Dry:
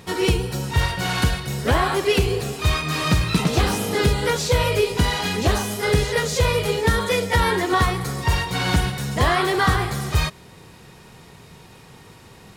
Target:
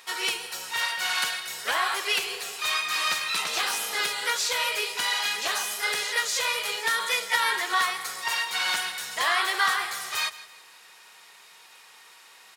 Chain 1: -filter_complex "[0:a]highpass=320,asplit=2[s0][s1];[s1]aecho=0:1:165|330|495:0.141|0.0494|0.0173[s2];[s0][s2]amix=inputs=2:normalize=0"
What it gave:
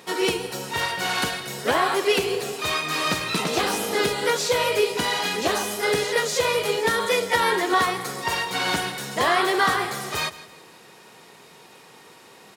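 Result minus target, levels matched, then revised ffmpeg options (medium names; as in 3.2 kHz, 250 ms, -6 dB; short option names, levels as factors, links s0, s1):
250 Hz band +17.5 dB
-filter_complex "[0:a]highpass=1200,asplit=2[s0][s1];[s1]aecho=0:1:165|330|495:0.141|0.0494|0.0173[s2];[s0][s2]amix=inputs=2:normalize=0"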